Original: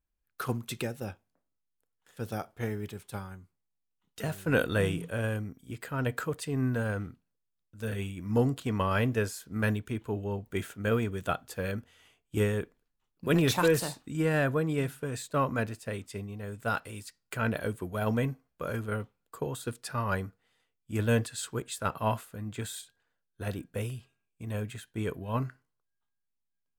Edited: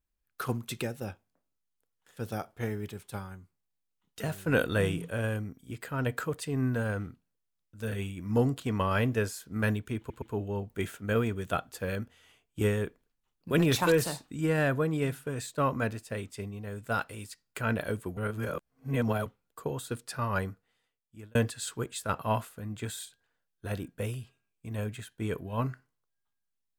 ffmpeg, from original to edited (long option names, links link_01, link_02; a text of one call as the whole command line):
ffmpeg -i in.wav -filter_complex "[0:a]asplit=6[link_01][link_02][link_03][link_04][link_05][link_06];[link_01]atrim=end=10.102[link_07];[link_02]atrim=start=9.978:end=10.102[link_08];[link_03]atrim=start=9.978:end=17.932[link_09];[link_04]atrim=start=17.928:end=19.022,asetpts=PTS-STARTPTS,areverse[link_10];[link_05]atrim=start=19.018:end=21.11,asetpts=PTS-STARTPTS,afade=type=out:start_time=1.212:duration=0.88[link_11];[link_06]atrim=start=21.11,asetpts=PTS-STARTPTS,afade=type=in:duration=0.004:curve=hsin[link_12];[link_07][link_08]acrossfade=duration=0.004:curve1=hsin:curve2=hsin[link_13];[link_13][link_09]acrossfade=duration=0.004:curve1=hsin:curve2=hsin[link_14];[link_14][link_10]acrossfade=duration=0.004:curve1=hsin:curve2=hsin[link_15];[link_11][link_12]concat=n=2:v=0:a=1[link_16];[link_15][link_16]acrossfade=duration=0.004:curve1=hsin:curve2=hsin" out.wav